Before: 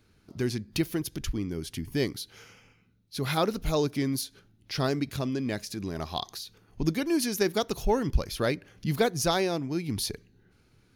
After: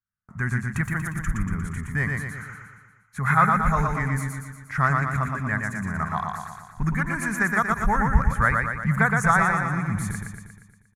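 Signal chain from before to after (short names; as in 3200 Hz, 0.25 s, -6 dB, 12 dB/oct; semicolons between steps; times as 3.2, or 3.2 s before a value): gate -55 dBFS, range -38 dB; EQ curve 200 Hz 0 dB, 320 Hz -21 dB, 570 Hz -12 dB, 1200 Hz +9 dB, 1900 Hz +8 dB, 2900 Hz -20 dB, 4900 Hz -29 dB, 7400 Hz -2 dB, 15000 Hz -21 dB; feedback echo 0.118 s, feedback 56%, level -3.5 dB; gain +6 dB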